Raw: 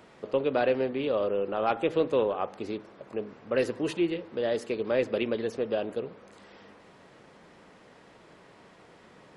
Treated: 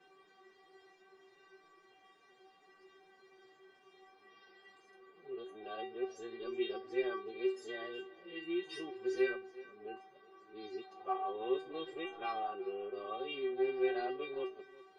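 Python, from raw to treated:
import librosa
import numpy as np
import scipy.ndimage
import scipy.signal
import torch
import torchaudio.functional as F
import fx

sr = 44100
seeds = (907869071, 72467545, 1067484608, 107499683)

y = np.flip(x).copy()
y = scipy.signal.sosfilt(scipy.signal.butter(2, 6000.0, 'lowpass', fs=sr, output='sos'), y)
y = fx.low_shelf(y, sr, hz=96.0, db=-11.5)
y = fx.stretch_vocoder(y, sr, factor=1.6)
y = fx.stiff_resonator(y, sr, f0_hz=380.0, decay_s=0.3, stiffness=0.002)
y = y + 10.0 ** (-19.0 / 20.0) * np.pad(y, (int(369 * sr / 1000.0), 0))[:len(y)]
y = y * librosa.db_to_amplitude(8.0)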